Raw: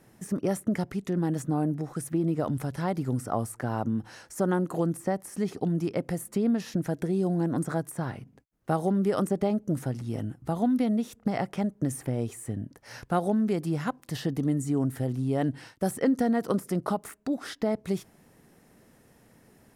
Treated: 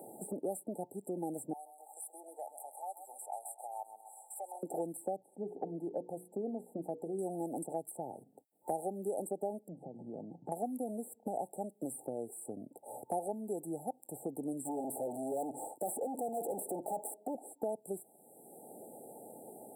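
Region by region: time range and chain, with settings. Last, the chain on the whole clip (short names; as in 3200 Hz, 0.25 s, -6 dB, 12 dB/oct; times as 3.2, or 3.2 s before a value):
1.53–4.63 HPF 1000 Hz 24 dB/oct + feedback echo 0.13 s, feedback 40%, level -12 dB
5.16–7.19 air absorption 400 m + notches 60/120/180/240/300/360/420/480 Hz
9.68–10.52 LPF 1200 Hz + compressor 16:1, threshold -34 dBFS + bell 170 Hz +14 dB 0.33 oct
14.65–17.35 overdrive pedal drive 26 dB, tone 5600 Hz, clips at -12.5 dBFS + hard clip -27 dBFS
whole clip: HPF 460 Hz 12 dB/oct; FFT band-reject 890–7500 Hz; three-band squash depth 70%; gain -3.5 dB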